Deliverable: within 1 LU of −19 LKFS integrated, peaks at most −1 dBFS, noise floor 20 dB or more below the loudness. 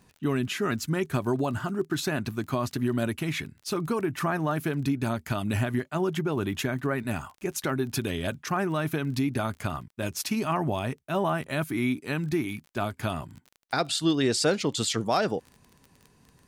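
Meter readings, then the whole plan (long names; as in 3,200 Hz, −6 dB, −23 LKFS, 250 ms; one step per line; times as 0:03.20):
crackle rate 25 per second; integrated loudness −29.0 LKFS; sample peak −12.5 dBFS; target loudness −19.0 LKFS
→ click removal
level +10 dB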